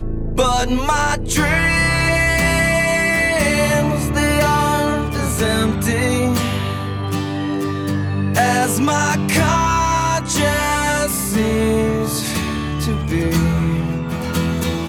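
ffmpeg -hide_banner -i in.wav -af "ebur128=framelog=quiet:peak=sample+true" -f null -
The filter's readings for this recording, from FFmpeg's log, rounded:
Integrated loudness:
  I:         -17.3 LUFS
  Threshold: -27.3 LUFS
Loudness range:
  LRA:         3.8 LU
  Threshold: -37.2 LUFS
  LRA low:   -19.1 LUFS
  LRA high:  -15.4 LUFS
Sample peak:
  Peak:       -4.3 dBFS
True peak:
  Peak:       -4.2 dBFS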